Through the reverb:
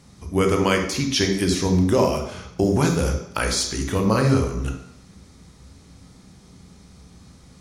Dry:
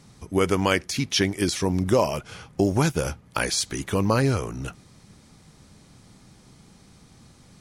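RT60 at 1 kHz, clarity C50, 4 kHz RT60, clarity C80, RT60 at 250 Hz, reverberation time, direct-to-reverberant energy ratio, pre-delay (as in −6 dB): 0.70 s, 6.5 dB, 0.70 s, 9.5 dB, 0.70 s, 0.70 s, 3.5 dB, 17 ms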